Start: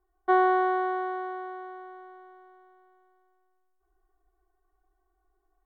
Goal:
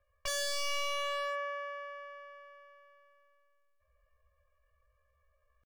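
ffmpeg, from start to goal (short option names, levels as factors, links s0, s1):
-filter_complex "[0:a]acrossover=split=180|1000[s0][s1][s2];[s2]asoftclip=type=tanh:threshold=0.0251[s3];[s0][s1][s3]amix=inputs=3:normalize=0,asetrate=68011,aresample=44100,atempo=0.64842,aeval=exprs='0.0355*(abs(mod(val(0)/0.0355+3,4)-2)-1)':c=same"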